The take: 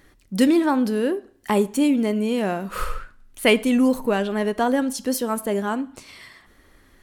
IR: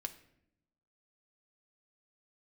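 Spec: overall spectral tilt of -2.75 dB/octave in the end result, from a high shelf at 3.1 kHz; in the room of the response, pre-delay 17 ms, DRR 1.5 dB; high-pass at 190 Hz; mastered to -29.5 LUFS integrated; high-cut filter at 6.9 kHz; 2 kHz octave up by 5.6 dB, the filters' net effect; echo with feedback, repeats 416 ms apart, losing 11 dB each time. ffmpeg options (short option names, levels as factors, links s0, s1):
-filter_complex "[0:a]highpass=190,lowpass=6900,equalizer=f=2000:t=o:g=8,highshelf=f=3100:g=-3,aecho=1:1:416|832|1248:0.282|0.0789|0.0221,asplit=2[s0][s1];[1:a]atrim=start_sample=2205,adelay=17[s2];[s1][s2]afir=irnorm=-1:irlink=0,volume=1.06[s3];[s0][s3]amix=inputs=2:normalize=0,volume=0.282"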